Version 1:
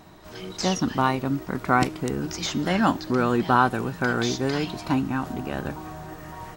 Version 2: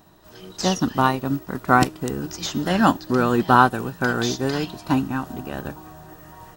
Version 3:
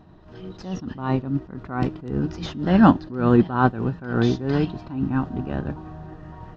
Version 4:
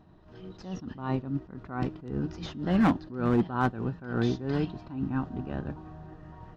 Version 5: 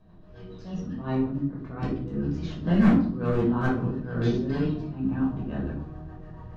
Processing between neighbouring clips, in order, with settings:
high shelf 12000 Hz +11 dB; notch 2200 Hz, Q 7.4; upward expander 1.5:1, over -37 dBFS; gain +5.5 dB
Gaussian blur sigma 2.1 samples; low shelf 360 Hz +10.5 dB; attack slew limiter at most 110 dB/s; gain -1.5 dB
hard clip -10.5 dBFS, distortion -14 dB; gain -7 dB
rotary speaker horn 7 Hz; shoebox room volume 570 m³, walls furnished, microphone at 5.5 m; gain -4.5 dB

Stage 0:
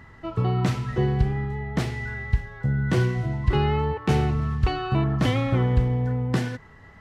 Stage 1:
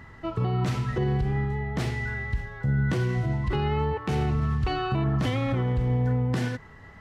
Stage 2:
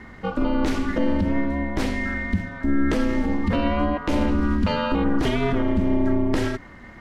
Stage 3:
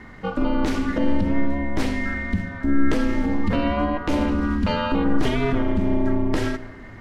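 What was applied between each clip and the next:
limiter -19 dBFS, peak gain reduction 10.5 dB; gain +1 dB
ring modulator 140 Hz; gain +7.5 dB
shoebox room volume 1800 m³, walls mixed, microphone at 0.39 m

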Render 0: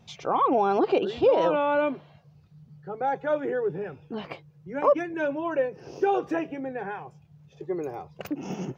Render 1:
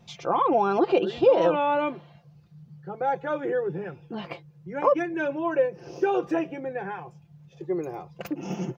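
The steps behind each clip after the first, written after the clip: comb 5.8 ms, depth 48%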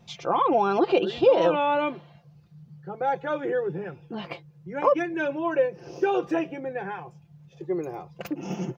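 dynamic EQ 3600 Hz, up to +4 dB, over -44 dBFS, Q 0.93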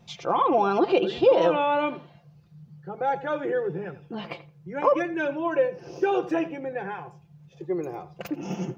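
darkening echo 85 ms, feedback 17%, low-pass 2800 Hz, level -14.5 dB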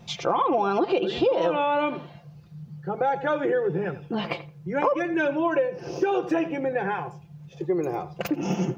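compressor 4:1, threshold -28 dBFS, peak gain reduction 13 dB; gain +7 dB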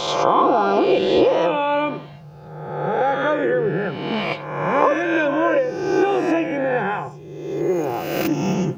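spectral swells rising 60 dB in 1.20 s; gain +2.5 dB

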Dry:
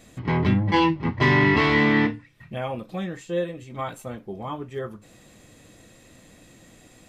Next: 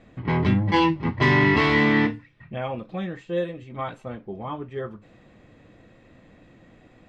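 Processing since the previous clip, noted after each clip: low-pass opened by the level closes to 2100 Hz, open at -16 dBFS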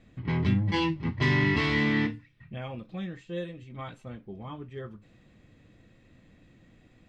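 bell 750 Hz -9.5 dB 2.7 oct; gain -2 dB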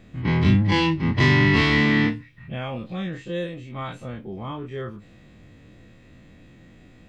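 spectral dilation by 60 ms; gain +4.5 dB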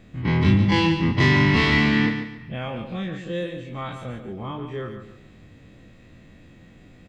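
feedback echo 0.142 s, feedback 32%, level -8.5 dB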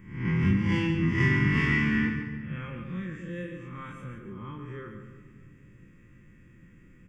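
spectral swells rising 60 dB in 0.60 s; fixed phaser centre 1700 Hz, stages 4; shoebox room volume 2800 m³, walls mixed, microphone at 0.89 m; gain -7 dB

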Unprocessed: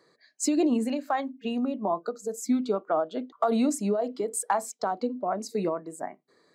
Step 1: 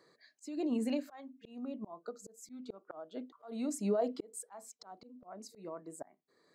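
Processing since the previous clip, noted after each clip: auto swell 0.625 s; gain -3 dB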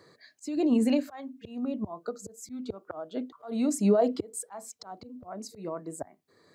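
bell 90 Hz +14 dB 1.1 oct; gain +8 dB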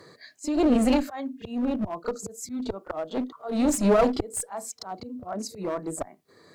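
one-sided clip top -33.5 dBFS; pre-echo 33 ms -16 dB; gain +7 dB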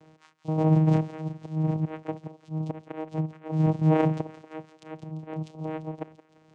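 thinning echo 0.171 s, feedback 83%, high-pass 1200 Hz, level -12 dB; downsampling 11025 Hz; vocoder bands 4, saw 157 Hz

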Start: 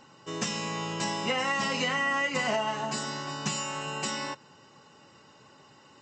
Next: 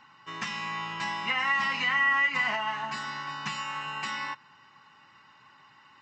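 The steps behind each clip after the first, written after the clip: graphic EQ 500/1000/2000/4000/8000 Hz -11/+10/+11/+4/-9 dB; gain -7.5 dB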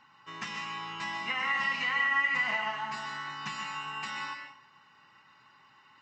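reverb RT60 0.45 s, pre-delay 0.12 s, DRR 4.5 dB; gain -4.5 dB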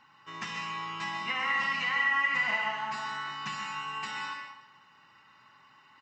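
feedback echo 66 ms, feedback 58%, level -9.5 dB

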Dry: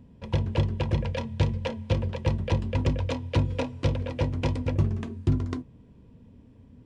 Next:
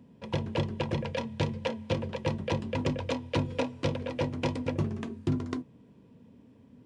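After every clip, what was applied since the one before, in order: HPF 160 Hz 12 dB/oct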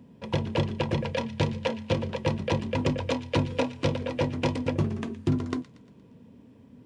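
thin delay 0.117 s, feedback 50%, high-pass 1700 Hz, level -15 dB; gain +3.5 dB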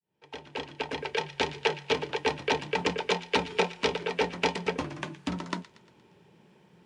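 opening faded in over 1.55 s; frequency shift -74 Hz; weighting filter A; gain +4.5 dB

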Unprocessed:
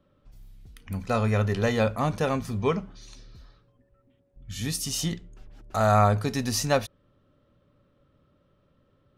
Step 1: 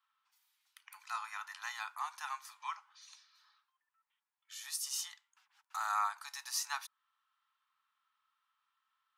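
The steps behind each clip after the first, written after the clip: steep high-pass 870 Hz 72 dB/oct; dynamic EQ 2700 Hz, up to -6 dB, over -47 dBFS, Q 1; gain -6 dB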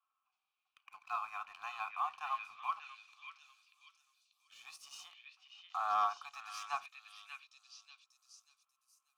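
vowel filter a; sample leveller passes 1; delay with a stepping band-pass 0.589 s, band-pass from 2600 Hz, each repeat 0.7 oct, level -1.5 dB; gain +8.5 dB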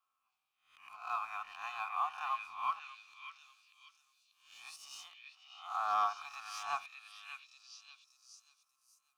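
spectral swells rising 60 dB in 0.47 s

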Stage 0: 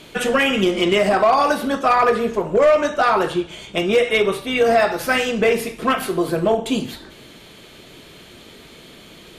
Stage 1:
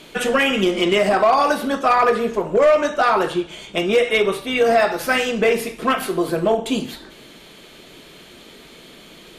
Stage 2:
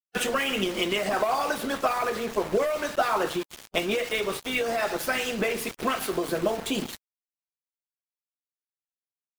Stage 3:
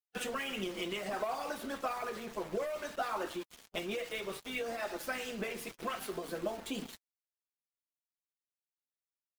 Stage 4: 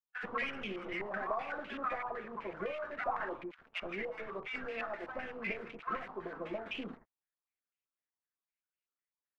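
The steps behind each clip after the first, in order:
bell 91 Hz -13 dB 0.69 oct
compressor 4:1, threshold -18 dBFS, peak gain reduction 6.5 dB; sample gate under -29.5 dBFS; harmonic-percussive split harmonic -8 dB
flange 0.61 Hz, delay 3.1 ms, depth 3.2 ms, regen -41%; gain -7.5 dB
tracing distortion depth 0.33 ms; bands offset in time highs, lows 80 ms, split 1000 Hz; stepped low-pass 7.9 Hz 970–2600 Hz; gain -3.5 dB

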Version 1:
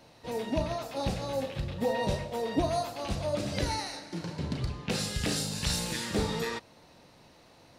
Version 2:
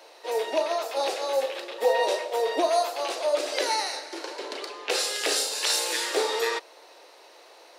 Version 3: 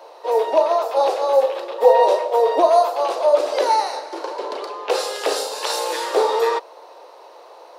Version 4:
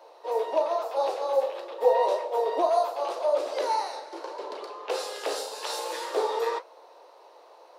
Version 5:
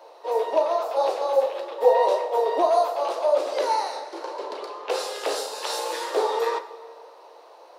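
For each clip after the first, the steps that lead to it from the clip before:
steep high-pass 360 Hz 48 dB/oct; gain +7.5 dB
graphic EQ 500/1000/2000/8000 Hz +8/+11/-4/-4 dB
flange 1.8 Hz, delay 8.8 ms, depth 9.6 ms, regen -56%; gain -5 dB
reverb RT60 1.8 s, pre-delay 10 ms, DRR 12 dB; gain +3.5 dB

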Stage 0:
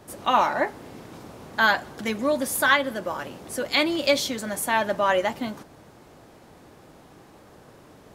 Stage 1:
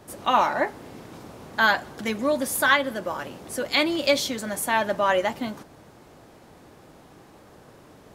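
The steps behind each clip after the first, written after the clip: nothing audible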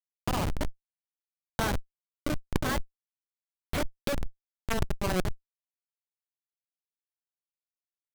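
Schmitt trigger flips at -17 dBFS; negative-ratio compressor -35 dBFS, ratio -1; gain +8 dB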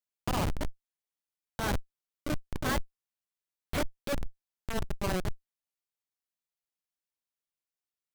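limiter -24.5 dBFS, peak gain reduction 11 dB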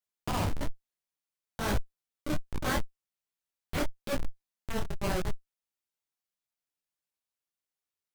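detuned doubles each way 40 cents; gain +3.5 dB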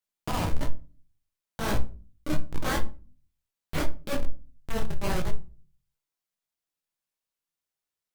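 shoebox room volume 210 m³, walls furnished, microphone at 0.63 m; gain +1 dB

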